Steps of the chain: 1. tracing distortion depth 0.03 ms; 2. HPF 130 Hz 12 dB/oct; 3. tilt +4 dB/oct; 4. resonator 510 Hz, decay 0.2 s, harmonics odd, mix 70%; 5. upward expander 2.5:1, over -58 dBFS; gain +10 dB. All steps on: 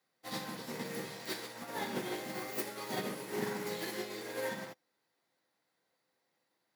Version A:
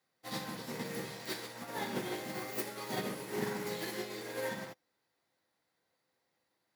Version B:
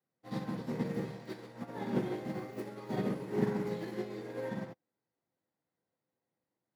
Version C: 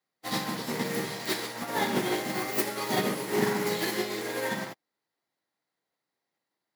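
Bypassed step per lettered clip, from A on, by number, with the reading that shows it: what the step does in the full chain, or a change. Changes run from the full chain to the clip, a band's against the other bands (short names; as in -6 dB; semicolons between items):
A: 2, 125 Hz band +2.0 dB; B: 3, 4 kHz band -13.0 dB; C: 4, loudness change +9.5 LU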